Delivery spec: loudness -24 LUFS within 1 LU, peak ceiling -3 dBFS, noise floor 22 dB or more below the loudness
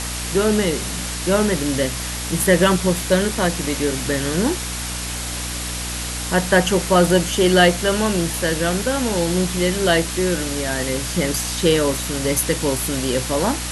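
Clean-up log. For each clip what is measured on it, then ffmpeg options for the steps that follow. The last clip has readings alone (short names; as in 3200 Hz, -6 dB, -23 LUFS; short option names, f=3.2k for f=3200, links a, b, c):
hum 60 Hz; harmonics up to 300 Hz; hum level -28 dBFS; noise floor -27 dBFS; noise floor target -42 dBFS; loudness -19.5 LUFS; peak -2.0 dBFS; loudness target -24.0 LUFS
-> -af "bandreject=f=60:t=h:w=6,bandreject=f=120:t=h:w=6,bandreject=f=180:t=h:w=6,bandreject=f=240:t=h:w=6,bandreject=f=300:t=h:w=6"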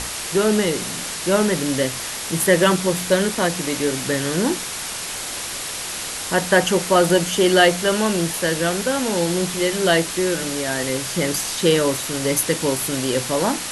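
hum none; noise floor -29 dBFS; noise floor target -42 dBFS
-> -af "afftdn=nr=13:nf=-29"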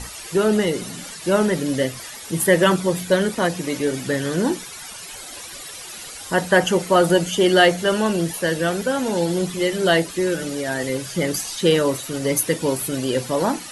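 noise floor -36 dBFS; noise floor target -43 dBFS
-> -af "afftdn=nr=7:nf=-36"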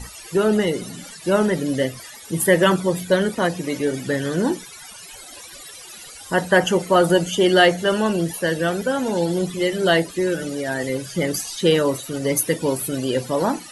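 noise floor -40 dBFS; noise floor target -43 dBFS
-> -af "afftdn=nr=6:nf=-40"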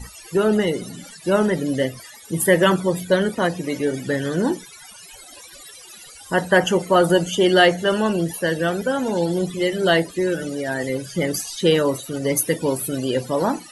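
noise floor -43 dBFS; loudness -20.5 LUFS; peak -3.0 dBFS; loudness target -24.0 LUFS
-> -af "volume=-3.5dB"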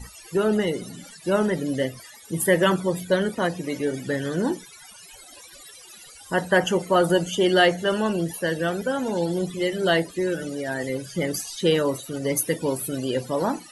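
loudness -24.0 LUFS; peak -6.5 dBFS; noise floor -46 dBFS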